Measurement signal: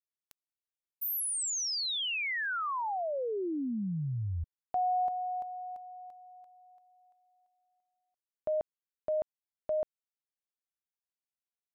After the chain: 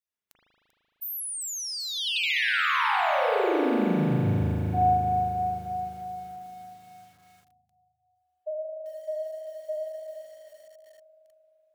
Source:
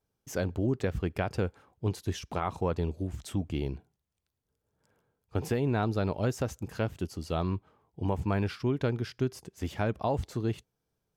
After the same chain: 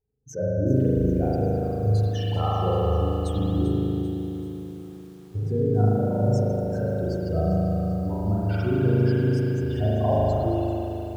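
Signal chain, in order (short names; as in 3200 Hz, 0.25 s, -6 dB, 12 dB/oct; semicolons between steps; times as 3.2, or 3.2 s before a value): spectral contrast raised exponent 2.8; spring tank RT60 3.7 s, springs 38 ms, chirp 80 ms, DRR -9 dB; lo-fi delay 0.391 s, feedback 55%, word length 8-bit, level -12 dB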